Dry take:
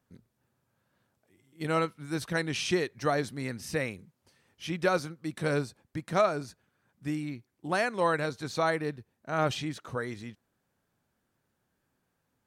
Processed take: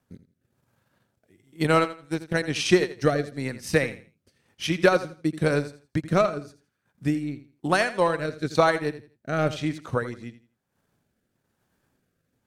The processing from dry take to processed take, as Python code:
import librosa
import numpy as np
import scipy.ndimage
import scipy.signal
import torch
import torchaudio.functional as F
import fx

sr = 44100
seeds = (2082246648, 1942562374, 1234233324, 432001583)

p1 = fx.power_curve(x, sr, exponent=1.4, at=(1.84, 2.34))
p2 = 10.0 ** (-22.0 / 20.0) * (np.abs((p1 / 10.0 ** (-22.0 / 20.0) + 3.0) % 4.0 - 2.0) - 1.0)
p3 = p1 + (p2 * 10.0 ** (-12.0 / 20.0))
p4 = fx.transient(p3, sr, attack_db=6, sustain_db=-9)
p5 = fx.rotary(p4, sr, hz=1.0)
p6 = fx.echo_feedback(p5, sr, ms=83, feedback_pct=25, wet_db=-14)
y = p6 * 10.0 ** (4.5 / 20.0)